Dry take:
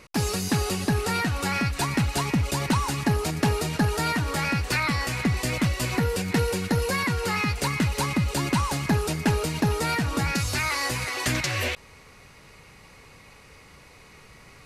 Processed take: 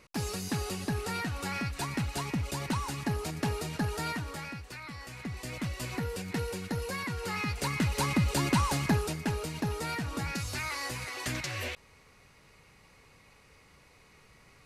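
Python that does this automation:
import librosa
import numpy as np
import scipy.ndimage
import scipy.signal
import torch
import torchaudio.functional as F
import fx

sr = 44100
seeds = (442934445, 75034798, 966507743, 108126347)

y = fx.gain(x, sr, db=fx.line((4.1, -8.5), (4.76, -19.5), (5.77, -10.0), (7.07, -10.0), (8.17, -2.5), (8.84, -2.5), (9.24, -9.0)))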